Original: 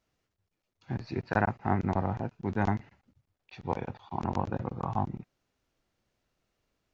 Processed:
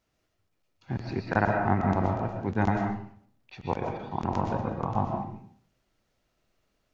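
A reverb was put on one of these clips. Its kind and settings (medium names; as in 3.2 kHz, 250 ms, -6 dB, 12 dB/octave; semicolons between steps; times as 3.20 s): algorithmic reverb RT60 0.56 s, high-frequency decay 0.6×, pre-delay 90 ms, DRR 2 dB; trim +2 dB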